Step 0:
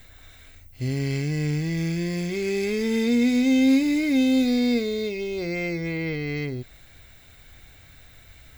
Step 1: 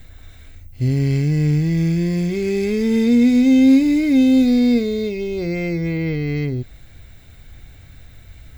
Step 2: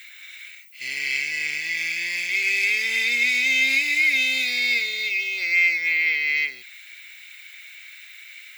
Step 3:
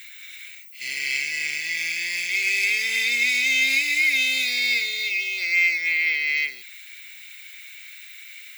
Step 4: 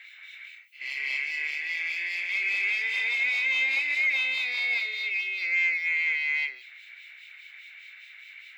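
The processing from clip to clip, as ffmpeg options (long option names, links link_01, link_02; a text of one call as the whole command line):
ffmpeg -i in.wav -af "lowshelf=frequency=370:gain=10.5" out.wav
ffmpeg -i in.wav -af "highpass=frequency=2300:width_type=q:width=3.9,volume=5dB" out.wav
ffmpeg -i in.wav -af "highshelf=frequency=4200:gain=8,volume=-2.5dB" out.wav
ffmpeg -i in.wav -filter_complex "[0:a]acrossover=split=2300[link_01][link_02];[link_01]aeval=exprs='val(0)*(1-0.7/2+0.7/2*cos(2*PI*4.9*n/s))':channel_layout=same[link_03];[link_02]aeval=exprs='val(0)*(1-0.7/2-0.7/2*cos(2*PI*4.9*n/s))':channel_layout=same[link_04];[link_03][link_04]amix=inputs=2:normalize=0,asplit=2[link_05][link_06];[link_06]highpass=frequency=720:poles=1,volume=11dB,asoftclip=type=tanh:threshold=-12dB[link_07];[link_05][link_07]amix=inputs=2:normalize=0,lowpass=frequency=5000:poles=1,volume=-6dB,acrossover=split=320 3500:gain=0.0708 1 0.126[link_08][link_09][link_10];[link_08][link_09][link_10]amix=inputs=3:normalize=0,volume=-3.5dB" out.wav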